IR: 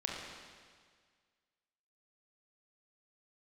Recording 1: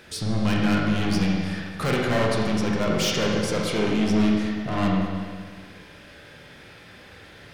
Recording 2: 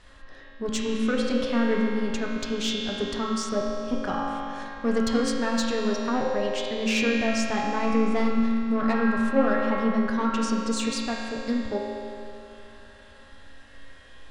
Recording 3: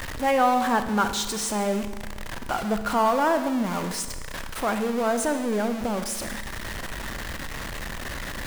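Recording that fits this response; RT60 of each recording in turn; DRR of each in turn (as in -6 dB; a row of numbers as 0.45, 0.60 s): 1; 1.8, 2.7, 1.3 s; -2.5, -5.0, 8.5 dB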